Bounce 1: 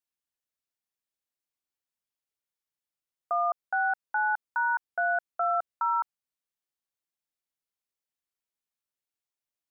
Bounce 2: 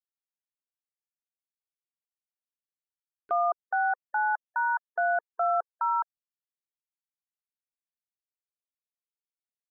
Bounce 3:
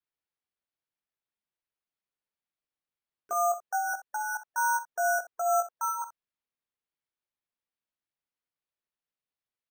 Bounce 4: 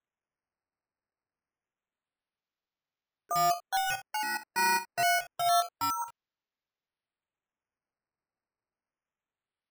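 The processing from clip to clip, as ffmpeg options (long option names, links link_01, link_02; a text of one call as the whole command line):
ffmpeg -i in.wav -af "afftfilt=real='re*gte(hypot(re,im),0.00891)':imag='im*gte(hypot(re,im),0.00891)':win_size=1024:overlap=0.75,equalizer=frequency=470:width=0.4:gain=9,acompressor=mode=upward:threshold=-31dB:ratio=2.5,volume=-5.5dB" out.wav
ffmpeg -i in.wav -filter_complex "[0:a]flanger=delay=17:depth=4:speed=0.22,acrusher=samples=6:mix=1:aa=0.000001,asplit=2[link_01][link_02];[link_02]aecho=0:1:49|63:0.133|0.211[link_03];[link_01][link_03]amix=inputs=2:normalize=0" out.wav
ffmpeg -i in.wav -af "acrusher=samples=9:mix=1:aa=0.000001:lfo=1:lforange=9:lforate=0.27" out.wav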